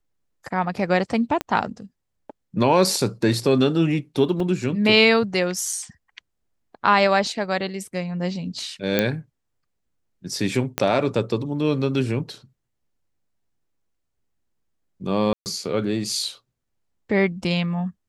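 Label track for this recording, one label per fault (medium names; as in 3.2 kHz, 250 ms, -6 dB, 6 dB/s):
1.410000	1.410000	pop -11 dBFS
4.400000	4.400000	dropout 2.6 ms
5.730000	5.730000	dropout 2.7 ms
8.990000	8.990000	pop -5 dBFS
10.780000	10.780000	pop -6 dBFS
15.330000	15.460000	dropout 129 ms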